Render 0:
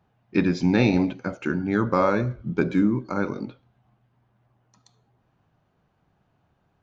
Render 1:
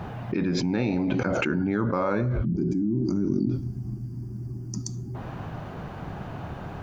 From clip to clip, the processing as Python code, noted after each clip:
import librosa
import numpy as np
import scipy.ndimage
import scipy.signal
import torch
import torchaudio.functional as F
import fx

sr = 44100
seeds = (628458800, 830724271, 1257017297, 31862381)

y = fx.spec_box(x, sr, start_s=2.45, length_s=2.7, low_hz=400.0, high_hz=4500.0, gain_db=-25)
y = fx.high_shelf(y, sr, hz=3400.0, db=-9.0)
y = fx.env_flatten(y, sr, amount_pct=100)
y = y * librosa.db_to_amplitude(-8.0)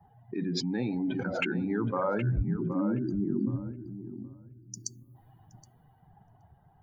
y = fx.bin_expand(x, sr, power=2.0)
y = fx.echo_tape(y, sr, ms=771, feedback_pct=26, wet_db=-7.5, lp_hz=2100.0, drive_db=13.0, wow_cents=12)
y = fx.band_widen(y, sr, depth_pct=40)
y = y * librosa.db_to_amplitude(-1.5)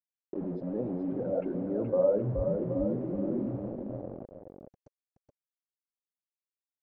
y = fx.quant_dither(x, sr, seeds[0], bits=6, dither='none')
y = fx.lowpass_res(y, sr, hz=550.0, q=4.9)
y = y + 10.0 ** (-6.5 / 20.0) * np.pad(y, (int(424 * sr / 1000.0), 0))[:len(y)]
y = y * librosa.db_to_amplitude(-6.0)